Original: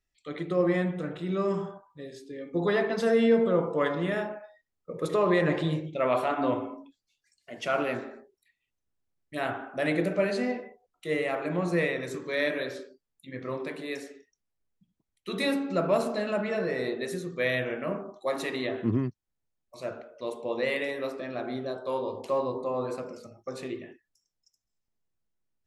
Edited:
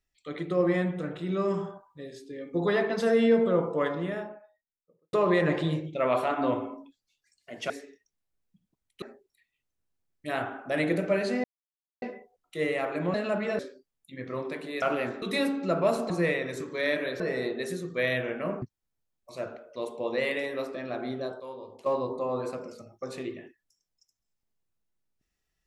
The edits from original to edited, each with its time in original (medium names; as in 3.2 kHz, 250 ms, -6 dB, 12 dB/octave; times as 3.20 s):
3.51–5.13 s: studio fade out
7.70–8.10 s: swap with 13.97–15.29 s
10.52 s: insert silence 0.58 s
11.64–12.74 s: swap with 16.17–16.62 s
18.04–19.07 s: delete
21.85–22.31 s: gain -10.5 dB